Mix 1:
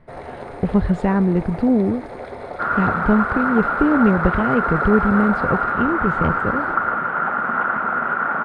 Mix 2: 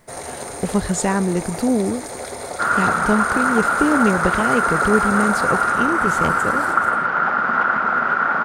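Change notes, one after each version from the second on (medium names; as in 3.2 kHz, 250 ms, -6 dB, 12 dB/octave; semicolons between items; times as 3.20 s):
speech: add bass shelf 160 Hz -9.5 dB; master: remove distance through air 430 m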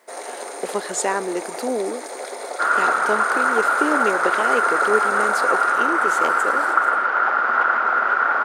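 first sound: add treble shelf 7.9 kHz -7 dB; master: add high-pass 340 Hz 24 dB/octave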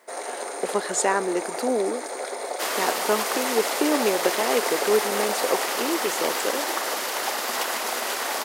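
second sound: remove resonant low-pass 1.4 kHz, resonance Q 13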